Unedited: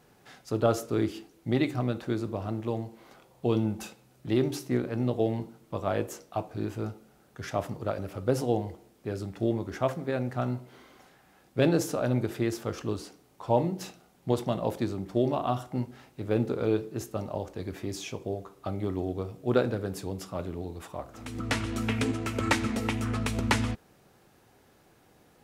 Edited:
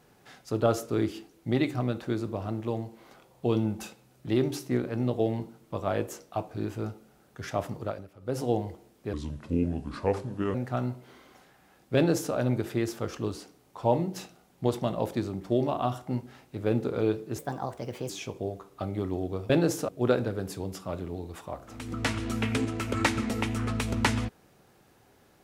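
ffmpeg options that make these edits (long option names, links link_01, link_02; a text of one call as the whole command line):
ffmpeg -i in.wav -filter_complex "[0:a]asplit=9[link_01][link_02][link_03][link_04][link_05][link_06][link_07][link_08][link_09];[link_01]atrim=end=8.09,asetpts=PTS-STARTPTS,afade=type=out:start_time=7.81:duration=0.28:silence=0.16788[link_10];[link_02]atrim=start=8.09:end=8.19,asetpts=PTS-STARTPTS,volume=-15.5dB[link_11];[link_03]atrim=start=8.19:end=9.134,asetpts=PTS-STARTPTS,afade=type=in:duration=0.28:silence=0.16788[link_12];[link_04]atrim=start=9.13:end=10.19,asetpts=PTS-STARTPTS,asetrate=33075,aresample=44100[link_13];[link_05]atrim=start=10.186:end=17.034[link_14];[link_06]atrim=start=17.03:end=17.95,asetpts=PTS-STARTPTS,asetrate=56889,aresample=44100,atrim=end_sample=31451,asetpts=PTS-STARTPTS[link_15];[link_07]atrim=start=17.946:end=19.352[link_16];[link_08]atrim=start=11.598:end=11.992[link_17];[link_09]atrim=start=19.348[link_18];[link_10][link_11][link_12]concat=n=3:v=0:a=1[link_19];[link_19][link_13]acrossfade=duration=0.004:curve1=hsin:curve2=hsin[link_20];[link_20][link_14]acrossfade=duration=0.004:curve1=hsin:curve2=hsin[link_21];[link_21][link_15]acrossfade=duration=0.004:curve1=hsin:curve2=hsin[link_22];[link_22][link_16]acrossfade=duration=0.004:curve1=hsin:curve2=hsin[link_23];[link_23][link_17]acrossfade=duration=0.004:curve1=hsin:curve2=hsin[link_24];[link_24][link_18]acrossfade=duration=0.004:curve1=hsin:curve2=hsin" out.wav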